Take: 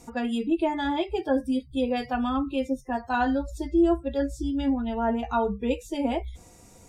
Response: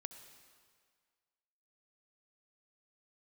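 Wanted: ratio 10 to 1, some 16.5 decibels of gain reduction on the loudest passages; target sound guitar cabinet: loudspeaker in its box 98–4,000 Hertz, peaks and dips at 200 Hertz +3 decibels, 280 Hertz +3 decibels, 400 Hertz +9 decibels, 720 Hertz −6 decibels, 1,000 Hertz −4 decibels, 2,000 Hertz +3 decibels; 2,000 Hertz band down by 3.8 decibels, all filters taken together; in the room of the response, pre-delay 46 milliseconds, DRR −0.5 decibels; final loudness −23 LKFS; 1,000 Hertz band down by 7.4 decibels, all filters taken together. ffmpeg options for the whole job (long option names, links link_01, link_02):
-filter_complex "[0:a]equalizer=frequency=1000:width_type=o:gain=-3.5,equalizer=frequency=2000:width_type=o:gain=-4.5,acompressor=threshold=-35dB:ratio=10,asplit=2[link_01][link_02];[1:a]atrim=start_sample=2205,adelay=46[link_03];[link_02][link_03]afir=irnorm=-1:irlink=0,volume=4.5dB[link_04];[link_01][link_04]amix=inputs=2:normalize=0,highpass=98,equalizer=frequency=200:width_type=q:width=4:gain=3,equalizer=frequency=280:width_type=q:width=4:gain=3,equalizer=frequency=400:width_type=q:width=4:gain=9,equalizer=frequency=720:width_type=q:width=4:gain=-6,equalizer=frequency=1000:width_type=q:width=4:gain=-4,equalizer=frequency=2000:width_type=q:width=4:gain=3,lowpass=frequency=4000:width=0.5412,lowpass=frequency=4000:width=1.3066,volume=10.5dB"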